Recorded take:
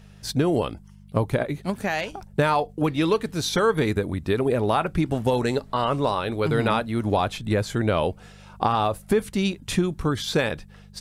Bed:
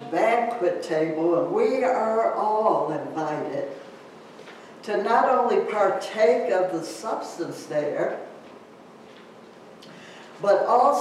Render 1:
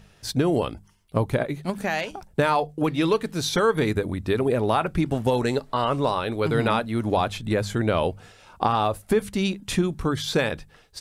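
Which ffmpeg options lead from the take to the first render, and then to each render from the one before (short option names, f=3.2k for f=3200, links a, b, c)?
-af "bandreject=f=50:t=h:w=4,bandreject=f=100:t=h:w=4,bandreject=f=150:t=h:w=4,bandreject=f=200:t=h:w=4"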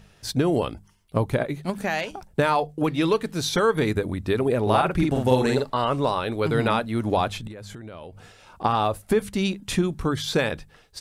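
-filter_complex "[0:a]asettb=1/sr,asplit=3[a][b][c];[a]atrim=end=4.624[d];[b]atrim=start=4.62:end=5.7,asetpts=PTS-STARTPTS,afade=t=in:d=0.004:c=qsin,afade=t=out:st=1.076:d=0.004:c=qsin,asplit=2[e][f];[f]adelay=47,volume=-2dB[g];[e][g]amix=inputs=2:normalize=0,atrim=end_sample=47628[h];[c]atrim=start=5.696[i];[d][h]acrossfade=d=0.004:c1=hsin:c2=qsin[j];[j][i]acrossfade=d=0.004:c1=qsin:c2=hsin,asettb=1/sr,asplit=3[k][l][m];[k]atrim=end=7.474[n];[l]atrim=start=7.47:end=8.64,asetpts=PTS-STARTPTS,afade=t=in:d=0.004:c=qsin,afade=t=out:st=1.166:d=0.004:c=qsin,acompressor=threshold=-35dB:ratio=16:attack=3.2:release=140:knee=1:detection=peak[o];[m]atrim=start=8.636[p];[n][o]acrossfade=d=0.004:c1=hsin:c2=qsin[q];[q][p]acrossfade=d=0.004:c1=qsin:c2=hsin"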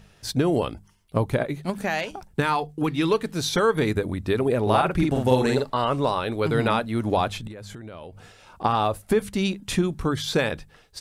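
-filter_complex "[0:a]asettb=1/sr,asplit=3[a][b][c];[a]atrim=end=2.284[d];[b]atrim=start=2.28:end=3.1,asetpts=PTS-STARTPTS,afade=t=in:d=0.004:c=qsin,afade=t=out:st=0.816:d=0.004:c=qsin,equalizer=f=580:w=3.7:g=-12[e];[c]atrim=start=3.096[f];[d][e]acrossfade=d=0.004:c1=hsin:c2=qsin[g];[g][f]acrossfade=d=0.004:c1=qsin:c2=hsin"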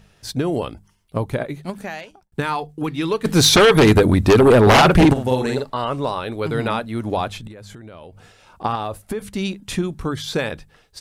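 -filter_complex "[0:a]asplit=3[a][b][c];[a]afade=t=out:st=3.24:d=0.02[d];[b]aeval=exprs='0.447*sin(PI/2*3.55*val(0)/0.447)':c=same,afade=t=in:st=3.24:d=0.02,afade=t=out:st=5.12:d=0.02[e];[c]afade=t=in:st=5.12:d=0.02[f];[d][e][f]amix=inputs=3:normalize=0,asettb=1/sr,asplit=3[g][h][i];[g]atrim=end=8.754[j];[h]atrim=start=8.75:end=9.24,asetpts=PTS-STARTPTS,afade=t=in:d=0.004:c=qsin,afade=t=out:st=0.486:d=0.004:c=qsin,acompressor=threshold=-21dB:ratio=6:attack=3.2:release=140:knee=1:detection=peak[k];[i]atrim=start=9.236[l];[j][k]acrossfade=d=0.004:c1=hsin:c2=qsin[m];[m][l]acrossfade=d=0.004:c1=qsin:c2=hsin,asplit=2[n][o];[n]atrim=end=2.32,asetpts=PTS-STARTPTS,afade=t=out:st=1.61:d=0.71[p];[o]atrim=start=2.32,asetpts=PTS-STARTPTS,afade=t=in:d=0.004:c=hsin[q];[p][q]concat=n=2:v=0:a=1"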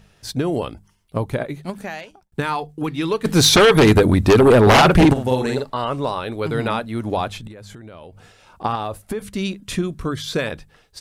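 -filter_complex "[0:a]asettb=1/sr,asplit=3[a][b][c];[a]atrim=end=9.244[d];[b]atrim=start=9.24:end=10.47,asetpts=PTS-STARTPTS,afade=t=in:d=0.004:c=qsin,afade=t=out:st=1.226:d=0.004:c=qsin,asuperstop=centerf=840:order=4:qfactor=5.3[e];[c]atrim=start=10.466[f];[d][e]acrossfade=d=0.004:c1=hsin:c2=qsin[g];[g][f]acrossfade=d=0.004:c1=qsin:c2=hsin"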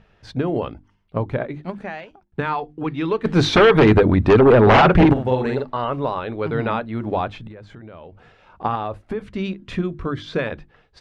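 -af "lowpass=2.5k,bandreject=f=50:t=h:w=6,bandreject=f=100:t=h:w=6,bandreject=f=150:t=h:w=6,bandreject=f=200:t=h:w=6,bandreject=f=250:t=h:w=6,bandreject=f=300:t=h:w=6,bandreject=f=350:t=h:w=6"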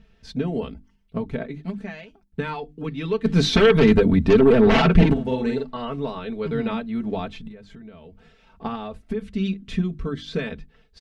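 -af "equalizer=f=940:t=o:w=2.5:g=-11.5,aecho=1:1:4.5:0.8"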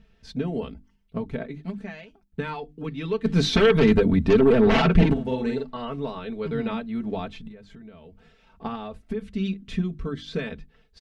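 -af "volume=-2.5dB"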